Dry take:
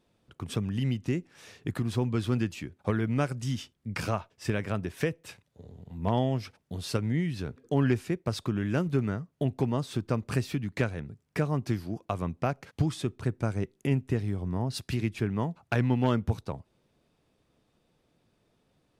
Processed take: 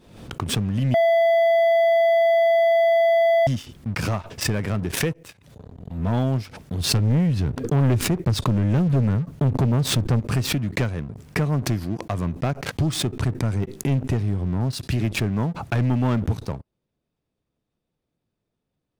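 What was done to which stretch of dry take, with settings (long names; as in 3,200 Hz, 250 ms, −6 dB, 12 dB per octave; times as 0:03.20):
0:00.94–0:03.47: beep over 669 Hz −14 dBFS
0:06.80–0:10.20: low-shelf EQ 210 Hz +8.5 dB
whole clip: low-shelf EQ 310 Hz +5.5 dB; leveller curve on the samples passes 3; background raised ahead of every attack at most 72 dB per second; level −7.5 dB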